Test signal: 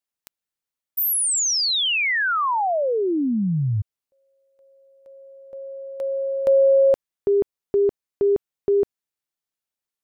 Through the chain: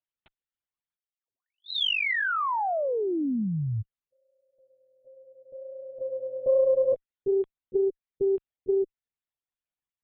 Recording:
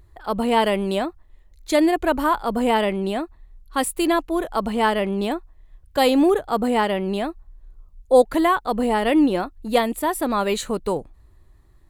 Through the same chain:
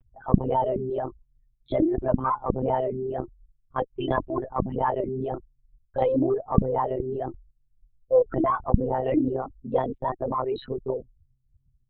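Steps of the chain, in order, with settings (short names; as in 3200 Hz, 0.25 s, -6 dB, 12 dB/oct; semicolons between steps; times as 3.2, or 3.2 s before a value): formant sharpening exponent 3; monotone LPC vocoder at 8 kHz 130 Hz; added harmonics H 6 -31 dB, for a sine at 11 dBFS; gain -5.5 dB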